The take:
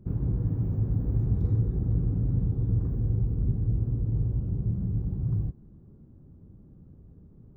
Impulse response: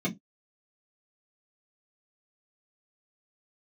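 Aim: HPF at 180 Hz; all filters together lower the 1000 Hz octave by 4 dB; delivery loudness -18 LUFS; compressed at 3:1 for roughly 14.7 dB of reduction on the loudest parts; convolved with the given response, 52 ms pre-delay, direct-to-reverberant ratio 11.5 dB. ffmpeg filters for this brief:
-filter_complex "[0:a]highpass=180,equalizer=f=1k:t=o:g=-5.5,acompressor=threshold=-51dB:ratio=3,asplit=2[a][b];[1:a]atrim=start_sample=2205,adelay=52[c];[b][c]afir=irnorm=-1:irlink=0,volume=-18.5dB[d];[a][d]amix=inputs=2:normalize=0,volume=30dB"

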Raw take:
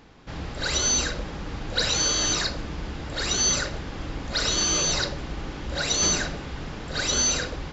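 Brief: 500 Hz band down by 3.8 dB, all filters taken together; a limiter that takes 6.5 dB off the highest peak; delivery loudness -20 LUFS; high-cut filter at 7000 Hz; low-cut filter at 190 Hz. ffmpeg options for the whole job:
-af "highpass=190,lowpass=7k,equalizer=f=500:t=o:g=-4.5,volume=8dB,alimiter=limit=-11dB:level=0:latency=1"

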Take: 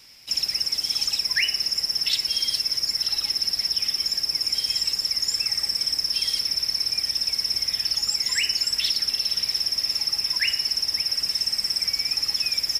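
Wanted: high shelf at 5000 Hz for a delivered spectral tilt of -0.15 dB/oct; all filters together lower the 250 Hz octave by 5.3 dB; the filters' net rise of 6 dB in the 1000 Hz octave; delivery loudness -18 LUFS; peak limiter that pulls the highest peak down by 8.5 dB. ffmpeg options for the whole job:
-af "equalizer=f=250:t=o:g=-8,equalizer=f=1k:t=o:g=8,highshelf=f=5k:g=-3.5,volume=8dB,alimiter=limit=-11dB:level=0:latency=1"

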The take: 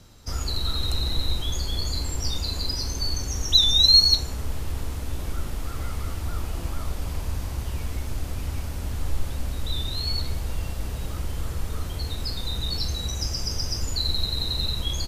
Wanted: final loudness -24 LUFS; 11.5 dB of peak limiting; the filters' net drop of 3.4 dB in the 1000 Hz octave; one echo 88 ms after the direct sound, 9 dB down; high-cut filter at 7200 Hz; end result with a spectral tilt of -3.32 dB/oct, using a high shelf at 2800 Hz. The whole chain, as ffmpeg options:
-af "lowpass=7.2k,equalizer=f=1k:t=o:g=-5,highshelf=f=2.8k:g=3,alimiter=limit=-16dB:level=0:latency=1,aecho=1:1:88:0.355,volume=3.5dB"

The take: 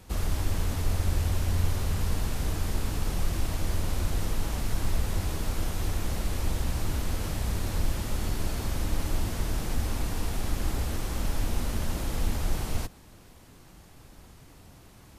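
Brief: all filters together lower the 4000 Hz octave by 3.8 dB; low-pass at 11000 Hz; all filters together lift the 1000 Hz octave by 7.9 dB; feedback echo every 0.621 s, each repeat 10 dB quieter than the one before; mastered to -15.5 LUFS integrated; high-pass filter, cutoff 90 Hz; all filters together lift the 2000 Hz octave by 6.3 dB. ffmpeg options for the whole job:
-af "highpass=90,lowpass=11k,equalizer=f=1k:t=o:g=8.5,equalizer=f=2k:t=o:g=7,equalizer=f=4k:t=o:g=-8,aecho=1:1:621|1242|1863|2484:0.316|0.101|0.0324|0.0104,volume=17dB"

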